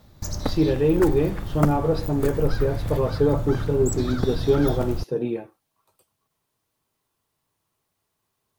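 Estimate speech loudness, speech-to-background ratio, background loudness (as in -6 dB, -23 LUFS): -23.5 LUFS, 6.5 dB, -30.0 LUFS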